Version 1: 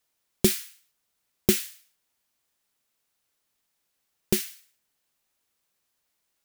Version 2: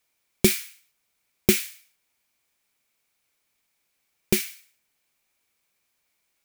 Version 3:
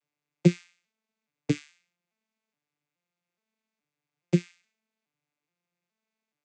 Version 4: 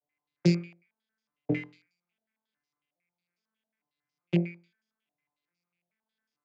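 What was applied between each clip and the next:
peaking EQ 2.3 kHz +10 dB 0.21 oct; trim +2 dB
vocoder on a broken chord minor triad, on D3, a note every 421 ms
on a send: flutter echo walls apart 4 m, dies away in 0.35 s; on the sum: step-sequenced low-pass 11 Hz 680–5300 Hz; trim -5.5 dB

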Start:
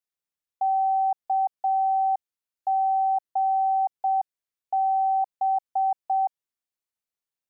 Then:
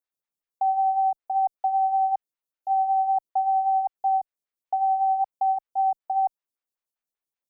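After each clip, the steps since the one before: lamp-driven phase shifter 5.2 Hz; trim +2 dB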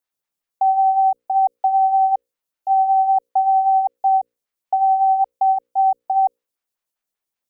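hum notches 60/120/180/240/300/360/420/480/540 Hz; trim +6.5 dB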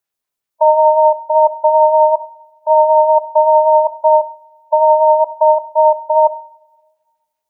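harmonic-percussive split harmonic +7 dB; ring modulator 150 Hz; on a send at -12 dB: reverberation, pre-delay 3 ms; on the sum: trim +1.5 dB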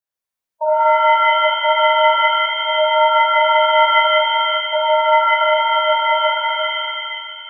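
pitch-shifted reverb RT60 2.1 s, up +7 st, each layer -2 dB, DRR -6 dB; trim -11.5 dB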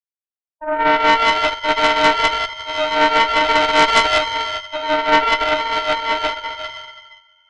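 high-pass 470 Hz 6 dB/octave; Chebyshev shaper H 4 -8 dB, 5 -18 dB, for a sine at -2 dBFS; upward expansion 2.5:1, over -26 dBFS; trim -1 dB

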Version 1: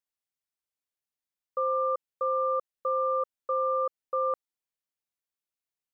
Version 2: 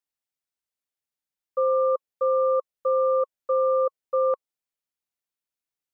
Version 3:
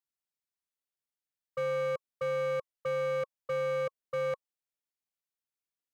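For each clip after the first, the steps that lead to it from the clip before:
dynamic bell 530 Hz, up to +8 dB, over -44 dBFS, Q 2.3; band-stop 1.1 kHz, Q 20
overload inside the chain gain 23 dB; trim -6 dB

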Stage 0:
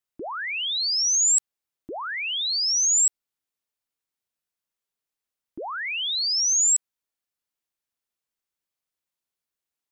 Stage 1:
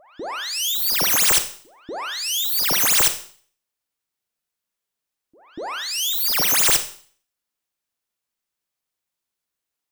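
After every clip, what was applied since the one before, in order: self-modulated delay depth 0.48 ms; pre-echo 240 ms -22.5 dB; Schroeder reverb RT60 0.48 s, combs from 31 ms, DRR 9 dB; trim +3.5 dB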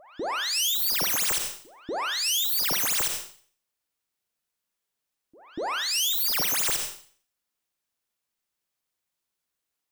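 peak limiter -19 dBFS, peak gain reduction 11.5 dB

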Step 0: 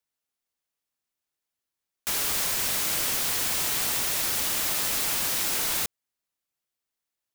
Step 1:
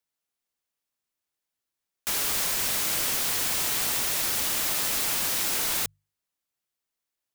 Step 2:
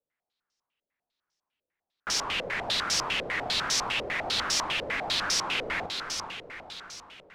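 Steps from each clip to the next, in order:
hum notches 50/100/150 Hz
saturation -22 dBFS, distortion -16 dB; echo that smears into a reverb 454 ms, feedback 52%, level -6.5 dB; step-sequenced low-pass 10 Hz 530–5500 Hz

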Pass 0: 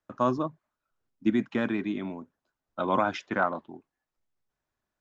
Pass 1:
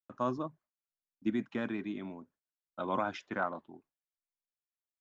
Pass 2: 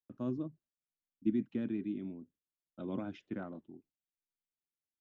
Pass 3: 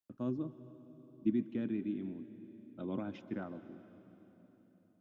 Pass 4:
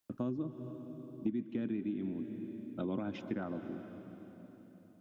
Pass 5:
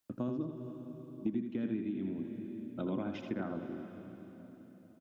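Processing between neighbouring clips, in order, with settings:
gate with hold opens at -57 dBFS; trim -7.5 dB
FFT filter 320 Hz 0 dB, 1 kHz -21 dB, 2.9 kHz -10 dB, 5.4 kHz -17 dB; trim +1 dB
reverberation RT60 3.9 s, pre-delay 120 ms, DRR 12.5 dB
compression 4:1, threshold -43 dBFS, peak gain reduction 15 dB; trim +9 dB
delay 82 ms -6.5 dB

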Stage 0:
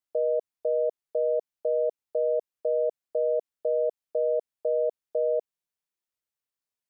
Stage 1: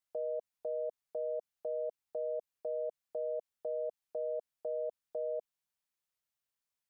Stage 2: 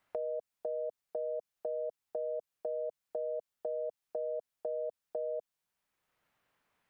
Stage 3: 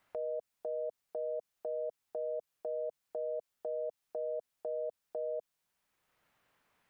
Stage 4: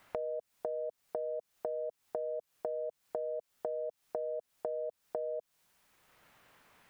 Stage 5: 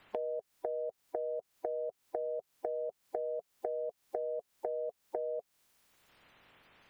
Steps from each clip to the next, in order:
peaking EQ 360 Hz -8 dB 0.76 oct; peak limiter -30 dBFS, peak gain reduction 9 dB
three bands compressed up and down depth 70%
peak limiter -34 dBFS, peak gain reduction 8 dB; trim +3.5 dB
compression 12:1, threshold -45 dBFS, peak gain reduction 11.5 dB; trim +11 dB
coarse spectral quantiser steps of 30 dB; trim +1 dB

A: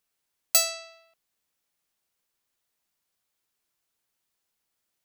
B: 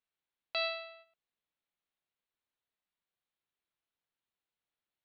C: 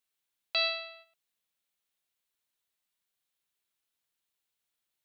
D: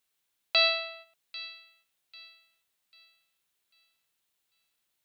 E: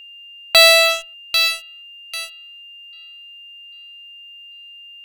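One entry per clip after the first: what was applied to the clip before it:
steep low-pass 4.2 kHz 72 dB/octave; gate -58 dBFS, range -9 dB; peak limiter -26 dBFS, peak gain reduction 6.5 dB
treble shelf 3 kHz +11.5 dB
feedback echo behind a high-pass 794 ms, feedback 34%, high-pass 1.7 kHz, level -16.5 dB; trim +5.5 dB
in parallel at -5.5 dB: fuzz box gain 41 dB, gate -48 dBFS; on the sum: whistle 2.8 kHz -44 dBFS; trim +6.5 dB

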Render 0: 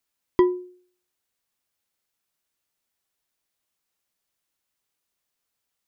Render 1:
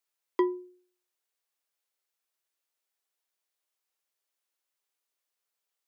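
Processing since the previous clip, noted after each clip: high-pass 350 Hz 24 dB/octave; trim -5 dB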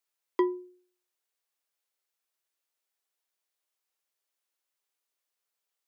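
no audible change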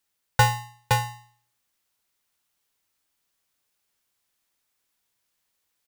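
on a send: delay 516 ms -3.5 dB; on the sum: polarity switched at an audio rate 480 Hz; trim +7.5 dB

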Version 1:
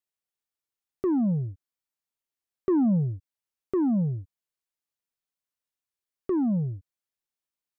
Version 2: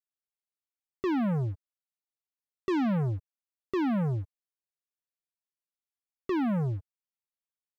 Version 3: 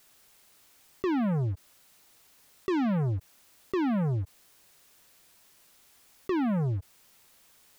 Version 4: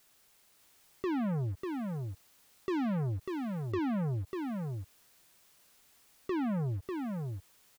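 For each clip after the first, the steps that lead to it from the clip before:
waveshaping leveller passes 3; trim -6 dB
level flattener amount 50%
delay 595 ms -4.5 dB; trim -5 dB

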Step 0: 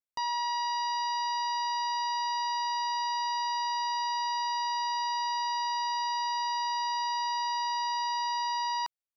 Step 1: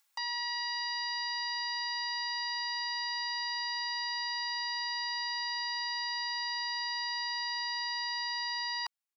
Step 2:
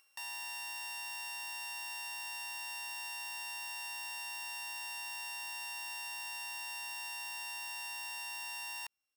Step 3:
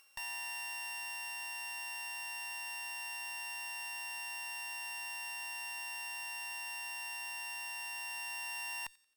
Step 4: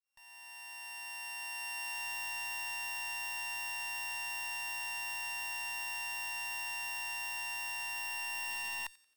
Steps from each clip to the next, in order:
high-pass 770 Hz 24 dB/octave; comb 3.6 ms, depth 93%; upward compressor, threshold -56 dBFS; trim -1.5 dB
sorted samples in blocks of 16 samples; peak limiter -38.5 dBFS, peak gain reduction 11.5 dB; trim +4 dB
feedback echo behind a high-pass 89 ms, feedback 38%, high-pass 1.9 kHz, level -24 dB; one-sided clip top -46 dBFS; gain riding 2 s; trim +3.5 dB
fade-in on the opening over 2.08 s; in parallel at -5.5 dB: integer overflow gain 38 dB

